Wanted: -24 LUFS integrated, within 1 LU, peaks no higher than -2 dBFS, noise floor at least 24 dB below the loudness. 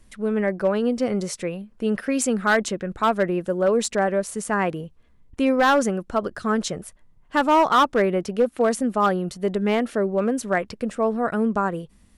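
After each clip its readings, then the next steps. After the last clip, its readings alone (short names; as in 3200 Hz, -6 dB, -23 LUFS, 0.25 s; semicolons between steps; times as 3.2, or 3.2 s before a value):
clipped 0.9%; flat tops at -12.0 dBFS; loudness -22.5 LUFS; peak -12.0 dBFS; loudness target -24.0 LUFS
-> clip repair -12 dBFS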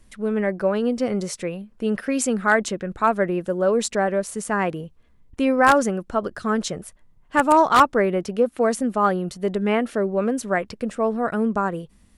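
clipped 0.0%; loudness -22.0 LUFS; peak -3.0 dBFS; loudness target -24.0 LUFS
-> gain -2 dB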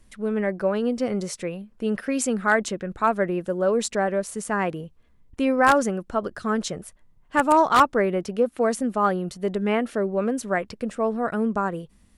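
loudness -24.0 LUFS; peak -5.0 dBFS; noise floor -57 dBFS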